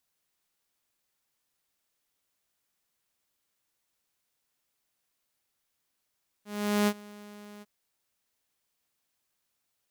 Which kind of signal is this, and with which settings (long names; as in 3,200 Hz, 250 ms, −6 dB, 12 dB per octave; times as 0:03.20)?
note with an ADSR envelope saw 207 Hz, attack 423 ms, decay 58 ms, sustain −23.5 dB, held 1.17 s, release 31 ms −19 dBFS